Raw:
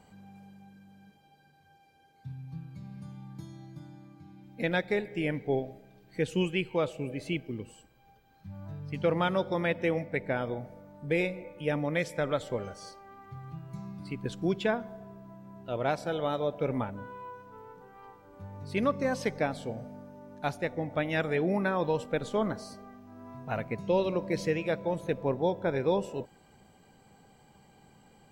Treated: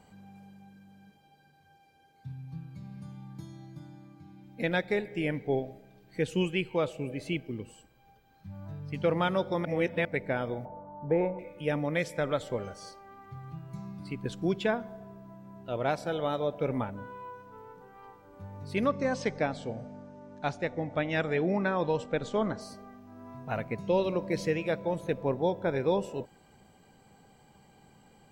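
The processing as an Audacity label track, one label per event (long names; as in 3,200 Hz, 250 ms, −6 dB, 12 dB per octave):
9.650000	10.050000	reverse
10.650000	11.390000	low-pass with resonance 920 Hz, resonance Q 5
18.860000	22.610000	Butterworth low-pass 8,000 Hz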